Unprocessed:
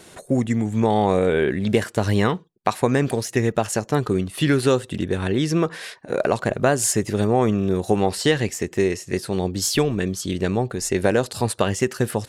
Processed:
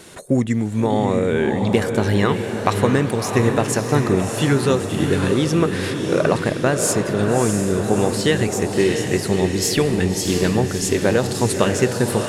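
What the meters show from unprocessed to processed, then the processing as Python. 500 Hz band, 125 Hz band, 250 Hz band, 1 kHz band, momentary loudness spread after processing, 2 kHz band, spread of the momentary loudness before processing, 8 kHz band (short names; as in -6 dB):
+2.5 dB, +3.5 dB, +3.0 dB, +1.0 dB, 2 LU, +3.0 dB, 6 LU, +2.5 dB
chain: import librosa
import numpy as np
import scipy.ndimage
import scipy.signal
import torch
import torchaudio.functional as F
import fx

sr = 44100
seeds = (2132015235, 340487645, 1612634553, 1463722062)

p1 = fx.peak_eq(x, sr, hz=720.0, db=-4.0, octaves=0.33)
p2 = fx.rider(p1, sr, range_db=4, speed_s=0.5)
p3 = p2 + fx.echo_diffused(p2, sr, ms=643, feedback_pct=55, wet_db=-5, dry=0)
y = p3 * librosa.db_to_amplitude(1.5)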